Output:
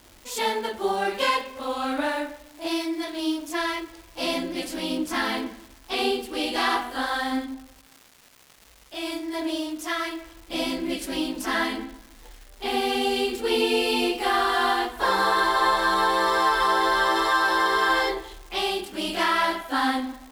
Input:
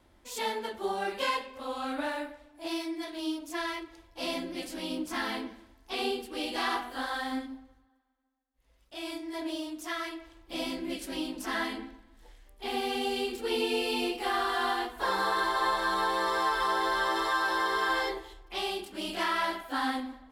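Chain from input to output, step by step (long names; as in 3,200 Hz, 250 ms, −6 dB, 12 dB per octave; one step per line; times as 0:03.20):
surface crackle 560 per second −46 dBFS
level +7 dB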